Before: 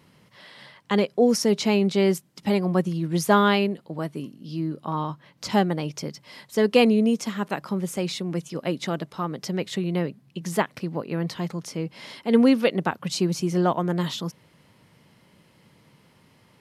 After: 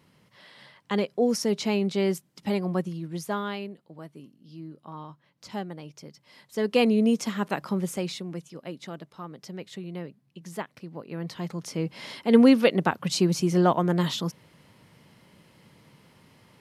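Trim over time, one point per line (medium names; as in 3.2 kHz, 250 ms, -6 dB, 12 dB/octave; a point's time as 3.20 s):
2.71 s -4.5 dB
3.44 s -13 dB
6.04 s -13 dB
7.10 s -0.5 dB
7.83 s -0.5 dB
8.59 s -11 dB
10.87 s -11 dB
11.85 s +1 dB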